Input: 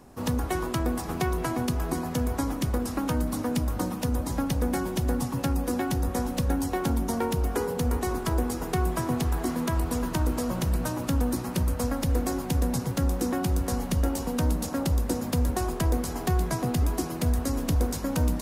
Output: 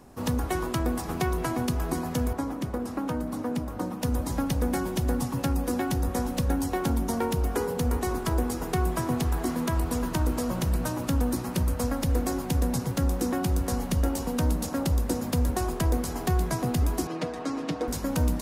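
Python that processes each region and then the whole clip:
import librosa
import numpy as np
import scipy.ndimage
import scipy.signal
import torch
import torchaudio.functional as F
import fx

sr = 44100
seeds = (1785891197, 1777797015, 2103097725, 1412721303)

y = fx.chain(x, sr, fx.highpass(hz=170.0, slope=6),
    fx.high_shelf(hz=2100.0, db=-9.5), at=(2.33, 4.03))
y = fx.chain(y, sr, fx.bandpass_edges(low_hz=250.0, high_hz=4100.0),
    fx.comb(ms=6.5, depth=0.76), at=(17.07, 17.88))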